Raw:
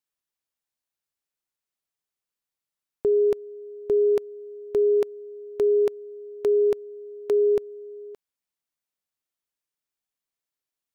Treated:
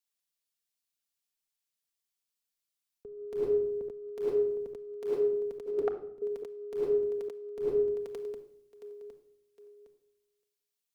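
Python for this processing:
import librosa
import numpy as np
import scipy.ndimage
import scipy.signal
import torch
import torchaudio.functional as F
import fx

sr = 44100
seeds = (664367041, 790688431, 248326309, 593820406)

y = fx.double_bandpass(x, sr, hz=990.0, octaves=0.71, at=(5.66, 6.22))
y = fx.echo_feedback(y, sr, ms=761, feedback_pct=52, wet_db=-23.0)
y = fx.room_shoebox(y, sr, seeds[0], volume_m3=2600.0, walls='furnished', distance_m=1.7)
y = fx.over_compress(y, sr, threshold_db=-33.0, ratio=-1.0)
y = fx.band_widen(y, sr, depth_pct=40)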